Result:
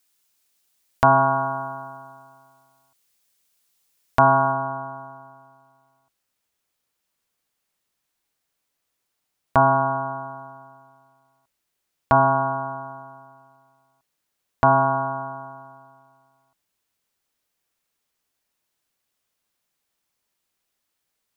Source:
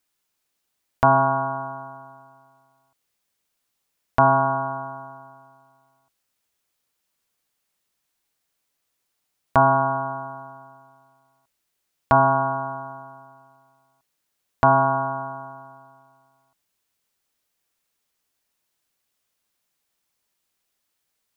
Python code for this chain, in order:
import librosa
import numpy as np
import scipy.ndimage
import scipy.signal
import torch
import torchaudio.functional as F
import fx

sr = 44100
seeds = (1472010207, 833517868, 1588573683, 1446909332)

y = fx.high_shelf(x, sr, hz=2800.0, db=fx.steps((0.0, 9.0), (4.51, -2.0)))